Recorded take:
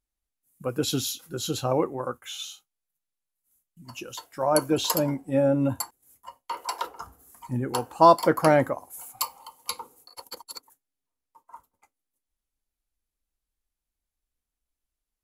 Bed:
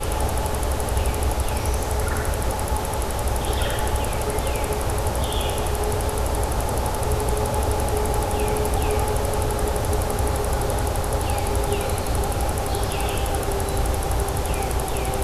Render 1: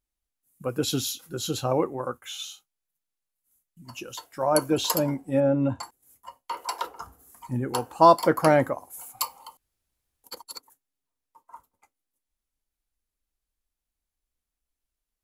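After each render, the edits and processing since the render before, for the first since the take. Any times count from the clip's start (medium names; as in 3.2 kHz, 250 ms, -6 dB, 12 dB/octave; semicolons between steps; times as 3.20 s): 5.40–5.83 s: distance through air 110 m; 9.57–10.24 s: room tone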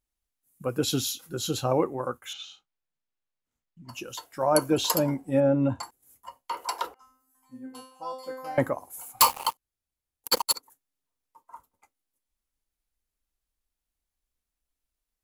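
2.33–3.89 s: distance through air 170 m; 6.94–8.58 s: feedback comb 260 Hz, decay 0.5 s, mix 100%; 9.20–10.54 s: waveshaping leveller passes 5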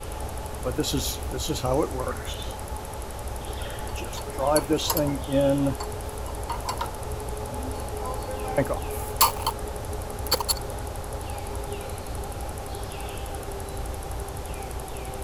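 add bed -10 dB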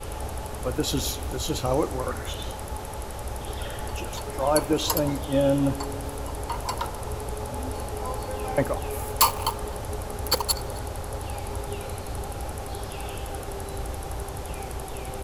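delay 261 ms -23.5 dB; spring tank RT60 2.9 s, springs 43 ms, DRR 18 dB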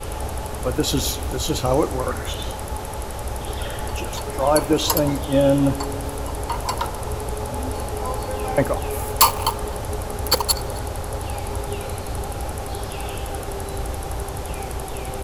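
trim +5 dB; peak limiter -3 dBFS, peak gain reduction 2 dB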